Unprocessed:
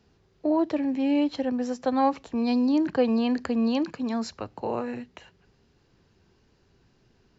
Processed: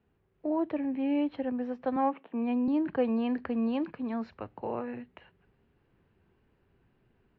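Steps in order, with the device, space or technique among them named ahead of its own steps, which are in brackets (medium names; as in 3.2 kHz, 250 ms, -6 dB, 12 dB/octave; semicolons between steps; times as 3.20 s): 1.96–2.68 s: Chebyshev band-pass 200–3100 Hz, order 3; action camera in a waterproof case (low-pass 2.8 kHz 24 dB/octave; level rider gain up to 4 dB; trim -9 dB; AAC 48 kbps 22.05 kHz)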